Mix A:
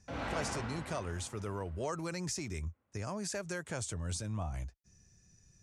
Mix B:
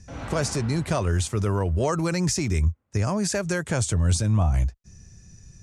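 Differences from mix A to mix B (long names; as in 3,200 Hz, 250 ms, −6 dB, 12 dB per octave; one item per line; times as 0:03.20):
speech +11.5 dB
master: add low-shelf EQ 200 Hz +7.5 dB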